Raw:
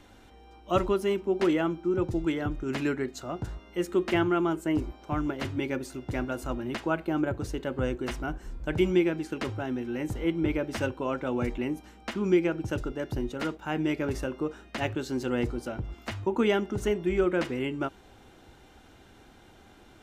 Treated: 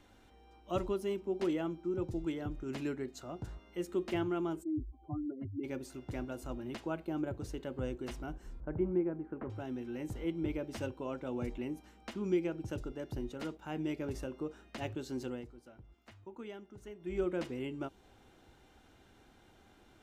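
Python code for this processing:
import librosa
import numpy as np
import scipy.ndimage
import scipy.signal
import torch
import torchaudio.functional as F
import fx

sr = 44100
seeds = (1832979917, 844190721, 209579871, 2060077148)

y = fx.spec_expand(x, sr, power=3.3, at=(4.62, 5.63), fade=0.02)
y = fx.lowpass(y, sr, hz=1500.0, slope=24, at=(8.6, 9.5))
y = fx.edit(y, sr, fx.fade_down_up(start_s=15.25, length_s=1.94, db=-13.5, fade_s=0.2), tone=tone)
y = fx.dynamic_eq(y, sr, hz=1600.0, q=0.92, threshold_db=-44.0, ratio=4.0, max_db=-6)
y = F.gain(torch.from_numpy(y), -8.0).numpy()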